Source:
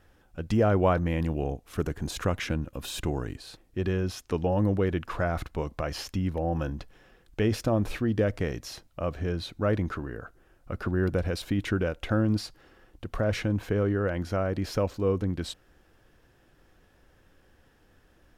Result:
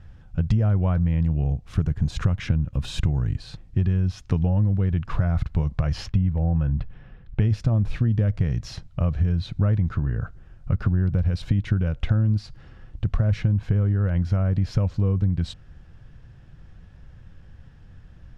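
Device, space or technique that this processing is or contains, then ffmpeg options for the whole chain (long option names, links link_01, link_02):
jukebox: -filter_complex "[0:a]asettb=1/sr,asplit=3[link_01][link_02][link_03];[link_01]atrim=end=6.064[link_04];[link_02]atrim=start=6.06:end=7.41,asetpts=PTS-STARTPTS,afade=type=in:duration=0.004:curve=qsin,afade=type=out:start_time=1.346:duration=0.004:curve=qsin,lowpass=2900[link_05];[link_03]atrim=start=7.406[link_06];[link_04][link_05]acrossfade=duration=0.004:curve1=hsin:curve2=qsin[link_07];[link_07][link_06]acrossfade=duration=0.004:curve1=qsin:curve2=hsin,lowpass=5900,lowshelf=frequency=220:width_type=q:width=1.5:gain=13.5,acompressor=threshold=-21dB:ratio=6,volume=3dB"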